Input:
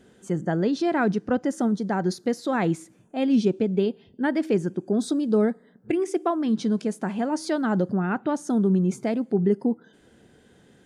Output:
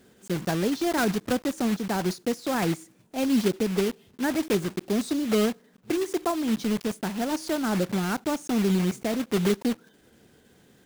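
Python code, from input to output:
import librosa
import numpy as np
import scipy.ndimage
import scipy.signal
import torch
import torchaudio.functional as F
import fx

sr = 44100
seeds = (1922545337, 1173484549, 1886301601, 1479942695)

y = fx.block_float(x, sr, bits=3)
y = y * 10.0 ** (-2.5 / 20.0)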